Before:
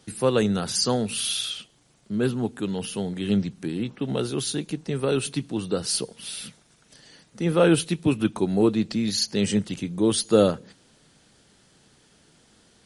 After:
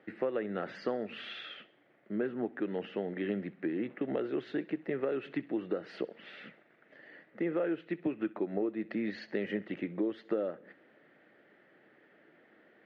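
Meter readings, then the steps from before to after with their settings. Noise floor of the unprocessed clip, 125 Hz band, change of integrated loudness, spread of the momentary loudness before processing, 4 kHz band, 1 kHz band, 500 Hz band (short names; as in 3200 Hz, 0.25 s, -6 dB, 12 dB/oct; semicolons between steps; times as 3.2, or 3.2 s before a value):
-60 dBFS, -18.5 dB, -11.5 dB, 11 LU, -21.0 dB, -11.5 dB, -9.5 dB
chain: speaker cabinet 300–2200 Hz, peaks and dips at 330 Hz +6 dB, 590 Hz +6 dB, 980 Hz -7 dB, 1900 Hz +9 dB; compressor 12:1, threshold -27 dBFS, peak gain reduction 16.5 dB; thinning echo 65 ms, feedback 52%, high-pass 800 Hz, level -19 dB; gain -2 dB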